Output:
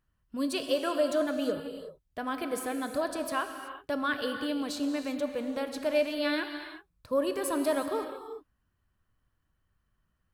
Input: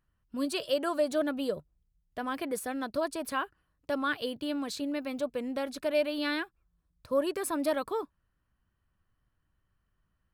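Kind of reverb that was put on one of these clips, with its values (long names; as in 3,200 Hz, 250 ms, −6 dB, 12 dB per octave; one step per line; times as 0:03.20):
reverb whose tail is shaped and stops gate 400 ms flat, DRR 6 dB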